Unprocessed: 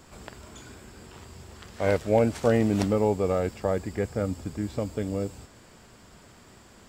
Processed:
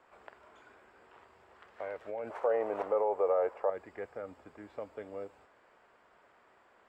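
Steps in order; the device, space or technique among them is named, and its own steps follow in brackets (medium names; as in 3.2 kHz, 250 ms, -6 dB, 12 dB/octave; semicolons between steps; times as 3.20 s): DJ mixer with the lows and highs turned down (three-band isolator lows -23 dB, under 430 Hz, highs -23 dB, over 2.4 kHz; peak limiter -24.5 dBFS, peak gain reduction 11.5 dB); 2.30–3.70 s: graphic EQ 125/250/500/1000/4000 Hz -7/-5/+11/+9/-4 dB; trim -5.5 dB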